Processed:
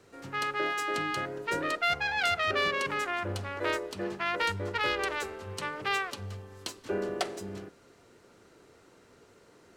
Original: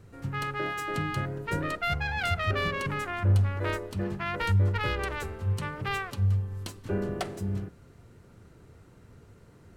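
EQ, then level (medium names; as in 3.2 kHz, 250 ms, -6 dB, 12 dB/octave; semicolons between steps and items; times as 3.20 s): three-band isolator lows -23 dB, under 300 Hz, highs -13 dB, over 6.9 kHz; bass shelf 410 Hz +6 dB; treble shelf 4.3 kHz +11.5 dB; 0.0 dB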